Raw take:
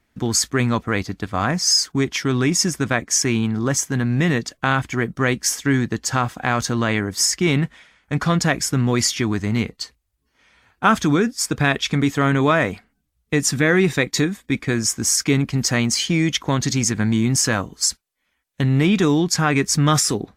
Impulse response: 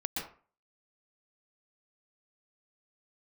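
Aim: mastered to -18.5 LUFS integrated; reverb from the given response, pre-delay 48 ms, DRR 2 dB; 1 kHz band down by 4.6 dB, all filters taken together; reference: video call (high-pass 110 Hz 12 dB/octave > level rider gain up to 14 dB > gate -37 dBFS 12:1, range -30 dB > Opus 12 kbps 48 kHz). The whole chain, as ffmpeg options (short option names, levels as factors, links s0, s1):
-filter_complex "[0:a]equalizer=f=1000:t=o:g=-6.5,asplit=2[s0][s1];[1:a]atrim=start_sample=2205,adelay=48[s2];[s1][s2]afir=irnorm=-1:irlink=0,volume=0.531[s3];[s0][s3]amix=inputs=2:normalize=0,highpass=110,dynaudnorm=m=5.01,agate=range=0.0316:threshold=0.0141:ratio=12,volume=1.06" -ar 48000 -c:a libopus -b:a 12k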